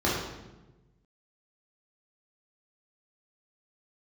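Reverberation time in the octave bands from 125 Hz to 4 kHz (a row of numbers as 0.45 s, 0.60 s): 1.7 s, 1.4 s, 1.3 s, 0.95 s, 0.85 s, 0.80 s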